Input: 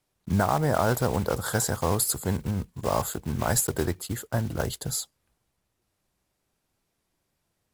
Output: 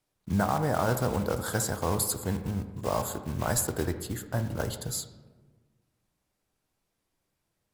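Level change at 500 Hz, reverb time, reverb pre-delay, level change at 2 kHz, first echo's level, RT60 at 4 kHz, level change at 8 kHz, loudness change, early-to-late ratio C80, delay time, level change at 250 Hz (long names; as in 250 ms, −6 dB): −3.0 dB, 1.3 s, 4 ms, −3.0 dB, no echo audible, 0.70 s, −3.5 dB, −3.0 dB, 12.0 dB, no echo audible, −2.0 dB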